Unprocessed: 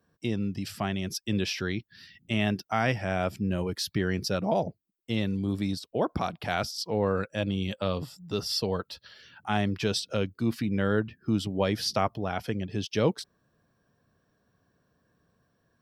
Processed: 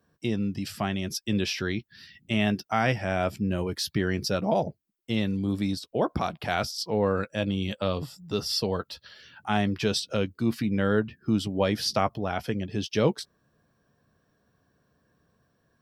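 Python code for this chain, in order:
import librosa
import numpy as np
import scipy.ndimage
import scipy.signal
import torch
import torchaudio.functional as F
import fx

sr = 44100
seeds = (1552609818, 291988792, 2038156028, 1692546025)

y = fx.doubler(x, sr, ms=14.0, db=-14)
y = F.gain(torch.from_numpy(y), 1.5).numpy()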